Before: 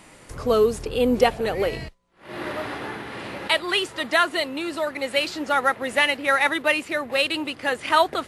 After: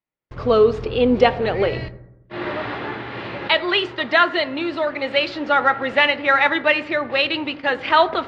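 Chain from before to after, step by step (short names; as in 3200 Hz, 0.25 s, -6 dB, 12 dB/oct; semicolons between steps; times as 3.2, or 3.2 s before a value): LPF 4200 Hz 24 dB/oct; gate -36 dBFS, range -47 dB; reverb RT60 0.90 s, pre-delay 4 ms, DRR 11.5 dB; gain +3.5 dB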